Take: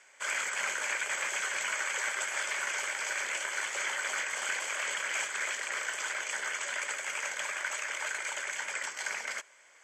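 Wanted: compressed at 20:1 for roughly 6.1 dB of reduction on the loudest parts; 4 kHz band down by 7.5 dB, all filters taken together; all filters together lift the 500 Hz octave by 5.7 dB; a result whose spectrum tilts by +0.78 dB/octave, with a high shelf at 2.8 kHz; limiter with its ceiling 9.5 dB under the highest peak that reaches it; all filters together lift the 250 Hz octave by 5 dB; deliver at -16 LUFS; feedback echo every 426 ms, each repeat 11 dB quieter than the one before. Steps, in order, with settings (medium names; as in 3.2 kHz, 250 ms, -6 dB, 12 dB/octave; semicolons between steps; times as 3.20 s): peaking EQ 250 Hz +4 dB; peaking EQ 500 Hz +6.5 dB; treble shelf 2.8 kHz -5.5 dB; peaking EQ 4 kHz -6.5 dB; compression 20:1, threshold -37 dBFS; peak limiter -36 dBFS; feedback delay 426 ms, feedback 28%, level -11 dB; trim +28 dB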